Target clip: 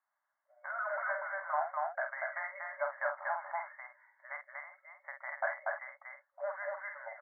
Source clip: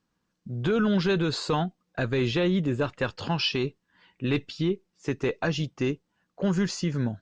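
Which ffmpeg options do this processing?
ffmpeg -i in.wav -filter_complex "[0:a]afftfilt=real='re*between(b*sr/4096,550,2200)':imag='im*between(b*sr/4096,550,2200)':win_size=4096:overlap=0.75,asplit=2[link_01][link_02];[link_02]aecho=0:1:46.65|239.1|288.6:0.501|0.794|0.355[link_03];[link_01][link_03]amix=inputs=2:normalize=0,volume=-4dB" out.wav

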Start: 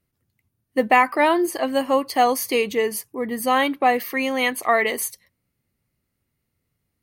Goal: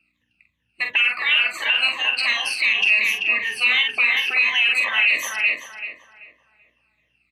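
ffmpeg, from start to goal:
ffmpeg -i in.wav -filter_complex "[0:a]afftfilt=real='re*pow(10,18/40*sin(2*PI*(1.1*log(max(b,1)*sr/1024/100)/log(2)-(-2.9)*(pts-256)/sr)))':imag='im*pow(10,18/40*sin(2*PI*(1.1*log(max(b,1)*sr/1024/100)/log(2)-(-2.9)*(pts-256)/sr)))':win_size=1024:overlap=0.75,asetrate=42336,aresample=44100,equalizer=frequency=100:width=0.6:gain=15,afftfilt=real='re*lt(hypot(re,im),0.501)':imag='im*lt(hypot(re,im),0.501)':win_size=1024:overlap=0.75,acontrast=69,lowpass=frequency=2600:width_type=q:width=9.7,aeval=exprs='val(0)+0.00501*(sin(2*PI*60*n/s)+sin(2*PI*2*60*n/s)/2+sin(2*PI*3*60*n/s)/3+sin(2*PI*4*60*n/s)/4+sin(2*PI*5*60*n/s)/5)':channel_layout=same,aderivative,asplit=2[link_01][link_02];[link_02]adelay=46,volume=-6.5dB[link_03];[link_01][link_03]amix=inputs=2:normalize=0,asplit=2[link_04][link_05];[link_05]adelay=385,lowpass=frequency=2000:poles=1,volume=-3dB,asplit=2[link_06][link_07];[link_07]adelay=385,lowpass=frequency=2000:poles=1,volume=0.35,asplit=2[link_08][link_09];[link_09]adelay=385,lowpass=frequency=2000:poles=1,volume=0.35,asplit=2[link_10][link_11];[link_11]adelay=385,lowpass=frequency=2000:poles=1,volume=0.35,asplit=2[link_12][link_13];[link_13]adelay=385,lowpass=frequency=2000:poles=1,volume=0.35[link_14];[link_06][link_08][link_10][link_12][link_14]amix=inputs=5:normalize=0[link_15];[link_04][link_15]amix=inputs=2:normalize=0,alimiter=level_in=12.5dB:limit=-1dB:release=50:level=0:latency=1,volume=-8dB" out.wav

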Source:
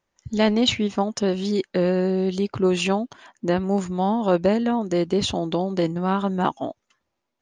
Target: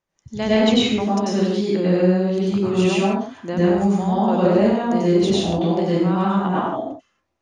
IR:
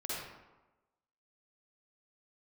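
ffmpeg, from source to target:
-filter_complex "[0:a]asettb=1/sr,asplit=3[link_01][link_02][link_03];[link_01]atrim=end=6.264[link_04];[link_02]atrim=start=6.26:end=6.66,asetpts=PTS-STARTPTS,afade=type=in:duration=0.004:curve=qsin,afade=type=out:start_time=0.396:duration=0.004:curve=qsin,bass=frequency=250:gain=-3,treble=frequency=4000:gain=-8[link_05];[link_03]atrim=start=6.656[link_06];[link_04][link_05]acrossfade=duration=0.004:curve1=hsin:curve2=qsin[link_07];[link_07][link_06]acrossfade=duration=0.004:curve1=qsin:curve2=hsin[link_08];[1:a]atrim=start_sample=2205,afade=type=out:start_time=0.19:duration=0.01,atrim=end_sample=8820,asetrate=22050,aresample=44100[link_09];[link_08][link_09]afir=irnorm=-1:irlink=0,volume=-4dB"

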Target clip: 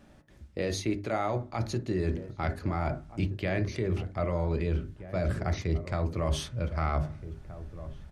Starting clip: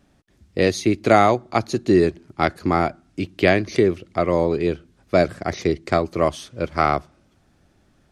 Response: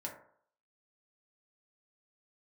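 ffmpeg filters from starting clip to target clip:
-filter_complex "[0:a]bandreject=frequency=50:width_type=h:width=6,bandreject=frequency=100:width_type=h:width=6,bandreject=frequency=150:width_type=h:width=6,bandreject=frequency=200:width_type=h:width=6,bandreject=frequency=250:width_type=h:width=6,bandreject=frequency=300:width_type=h:width=6,bandreject=frequency=350:width_type=h:width=6,bandreject=frequency=400:width_type=h:width=6,asubboost=boost=8:cutoff=110,areverse,acompressor=threshold=-25dB:ratio=12,areverse,alimiter=limit=-23.5dB:level=0:latency=1:release=56,asplit=2[link_01][link_02];[link_02]adelay=1574,volume=-13dB,highshelf=frequency=4000:gain=-35.4[link_03];[link_01][link_03]amix=inputs=2:normalize=0,asplit=2[link_04][link_05];[1:a]atrim=start_sample=2205,afade=type=out:start_time=0.13:duration=0.01,atrim=end_sample=6174,lowpass=3700[link_06];[link_05][link_06]afir=irnorm=-1:irlink=0,volume=-2dB[link_07];[link_04][link_07]amix=inputs=2:normalize=0"

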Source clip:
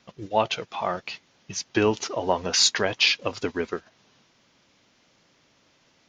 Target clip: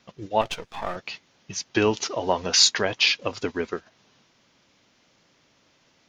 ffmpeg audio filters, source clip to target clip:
ffmpeg -i in.wav -filter_complex "[0:a]asettb=1/sr,asplit=3[link_01][link_02][link_03];[link_01]atrim=end=0.414[link_04];[link_02]atrim=start=0.41:end=0.96,asetpts=PTS-STARTPTS,afade=type=in:duration=0.004:curve=qsin,afade=type=out:start_time=0.546:duration=0.004:curve=qsin,aeval=exprs='if(lt(val(0),0),0.251*val(0),val(0))':channel_layout=same[link_05];[link_03]atrim=start=0.956[link_06];[link_04][link_05]acrossfade=duration=0.004:curve1=hsin:curve2=qsin[link_07];[link_07][link_06]acrossfade=duration=0.004:curve1=qsin:curve2=hsin,asettb=1/sr,asplit=3[link_08][link_09][link_10];[link_08]atrim=end=1.754[link_11];[link_09]atrim=start=1.75:end=2.65,asetpts=PTS-STARTPTS,afade=type=in:duration=0.004:curve=qsin,afade=type=out:start_time=0.896:duration=0.004:curve=qsin,equalizer=frequency=4400:width_type=o:width=1.8:gain=3.5[link_12];[link_10]atrim=start=2.646[link_13];[link_11][link_12]acrossfade=duration=0.004:curve1=hsin:curve2=qsin[link_14];[link_14][link_13]acrossfade=duration=0.004:curve1=qsin:curve2=hsin" out.wav

